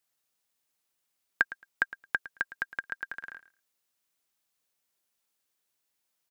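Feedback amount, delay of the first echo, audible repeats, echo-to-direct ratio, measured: 16%, 110 ms, 2, -16.5 dB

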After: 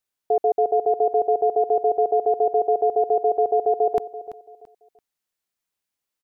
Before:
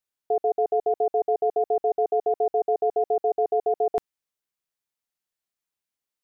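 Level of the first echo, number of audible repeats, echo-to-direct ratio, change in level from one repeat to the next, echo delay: -15.0 dB, 2, -14.5 dB, -10.5 dB, 336 ms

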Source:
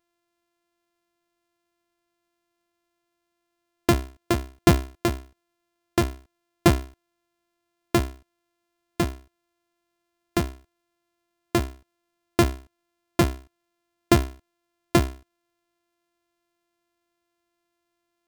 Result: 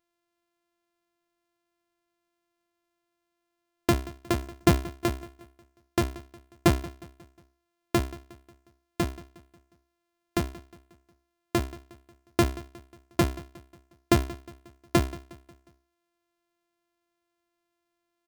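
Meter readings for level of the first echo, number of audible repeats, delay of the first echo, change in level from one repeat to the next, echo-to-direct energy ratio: -20.0 dB, 3, 180 ms, -6.0 dB, -19.0 dB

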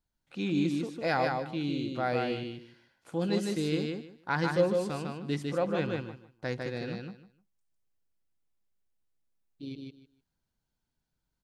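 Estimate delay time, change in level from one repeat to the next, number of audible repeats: 152 ms, -14.0 dB, 3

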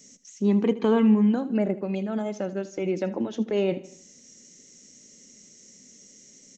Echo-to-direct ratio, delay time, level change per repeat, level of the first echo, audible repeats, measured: -16.0 dB, 78 ms, -6.5 dB, -17.0 dB, 3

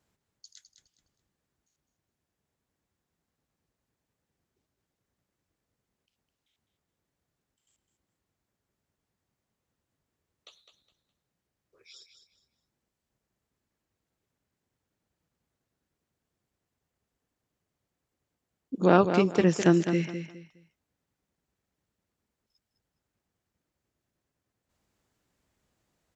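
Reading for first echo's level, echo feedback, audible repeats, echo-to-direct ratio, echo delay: -8.5 dB, 27%, 3, -8.0 dB, 207 ms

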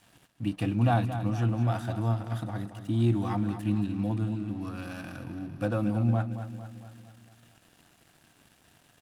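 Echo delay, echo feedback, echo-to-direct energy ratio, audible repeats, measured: 226 ms, 54%, -9.0 dB, 5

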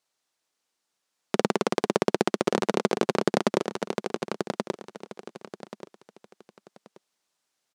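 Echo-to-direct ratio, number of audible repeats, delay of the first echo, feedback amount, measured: -4.5 dB, 3, 1131 ms, 26%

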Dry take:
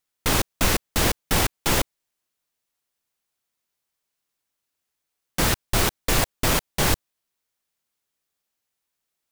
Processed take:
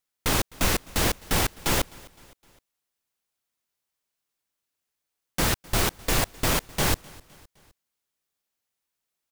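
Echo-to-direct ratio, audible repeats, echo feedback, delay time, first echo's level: -22.5 dB, 2, 50%, 257 ms, -23.5 dB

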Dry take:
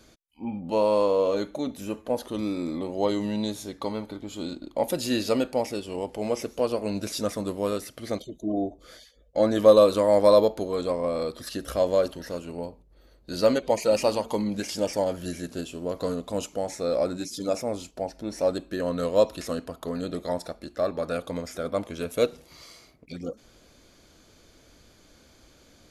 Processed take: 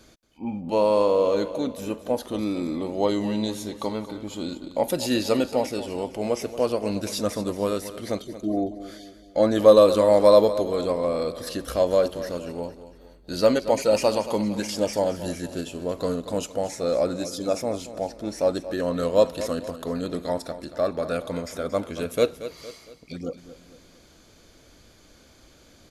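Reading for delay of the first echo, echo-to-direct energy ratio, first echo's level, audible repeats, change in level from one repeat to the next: 229 ms, -12.5 dB, -13.5 dB, 3, -6.5 dB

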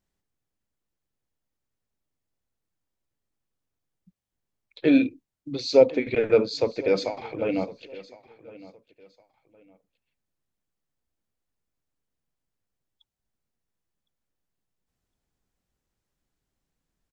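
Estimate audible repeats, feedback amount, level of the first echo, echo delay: 2, 26%, -19.5 dB, 1061 ms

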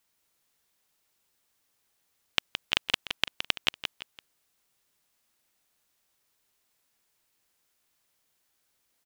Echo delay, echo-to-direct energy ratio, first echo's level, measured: 168 ms, -7.5 dB, -8.0 dB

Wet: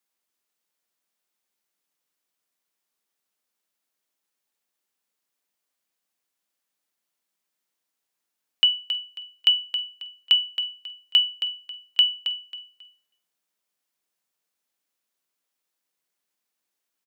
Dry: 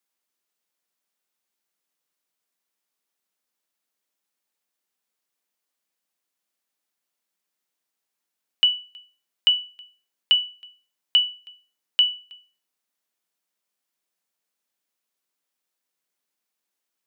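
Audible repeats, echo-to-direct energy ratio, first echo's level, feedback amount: 3, -9.0 dB, -9.5 dB, 28%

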